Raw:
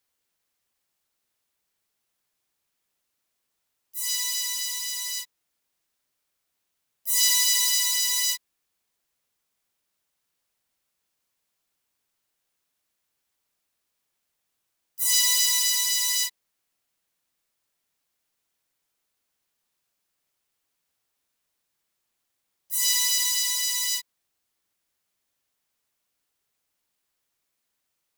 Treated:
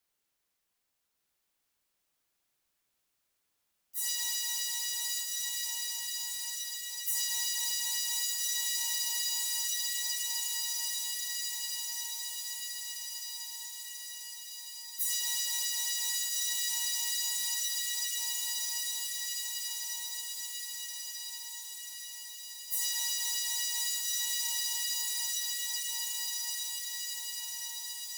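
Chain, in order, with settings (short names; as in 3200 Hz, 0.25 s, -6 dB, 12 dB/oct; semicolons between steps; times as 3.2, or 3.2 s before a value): frequency shift -63 Hz; diffused feedback echo 1.294 s, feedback 66%, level -4 dB; compressor 10:1, threshold -26 dBFS, peak gain reduction 11.5 dB; gain -2.5 dB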